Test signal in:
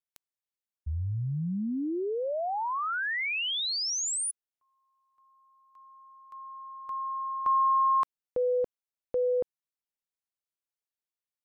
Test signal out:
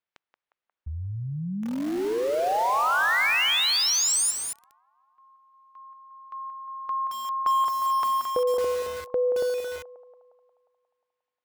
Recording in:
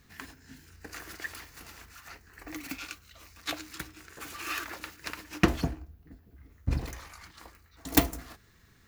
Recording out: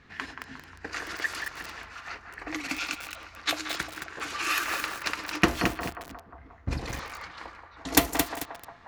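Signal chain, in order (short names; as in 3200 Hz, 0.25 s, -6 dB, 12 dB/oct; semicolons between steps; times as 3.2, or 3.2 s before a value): in parallel at +1 dB: compressor 12:1, threshold -35 dBFS; on the sum: low shelf 300 Hz -9 dB; narrowing echo 0.178 s, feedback 67%, band-pass 920 Hz, level -6.5 dB; low-pass opened by the level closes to 2600 Hz, open at -26 dBFS; lo-fi delay 0.22 s, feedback 35%, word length 6-bit, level -5 dB; gain +3 dB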